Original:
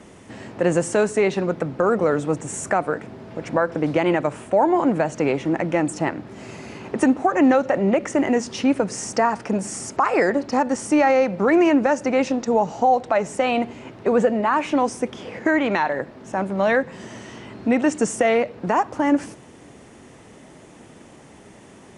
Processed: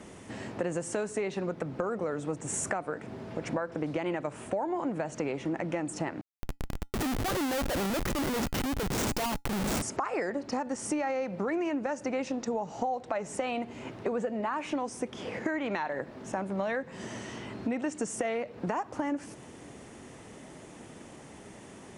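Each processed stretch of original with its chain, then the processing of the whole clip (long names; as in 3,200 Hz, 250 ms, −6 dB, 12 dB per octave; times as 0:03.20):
0:06.21–0:09.82: comparator with hysteresis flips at −27.5 dBFS + tuned comb filter 280 Hz, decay 0.16 s, harmonics odd, mix 30%
whole clip: downward compressor 5 to 1, threshold −27 dBFS; high-shelf EQ 9,000 Hz +4 dB; level −2.5 dB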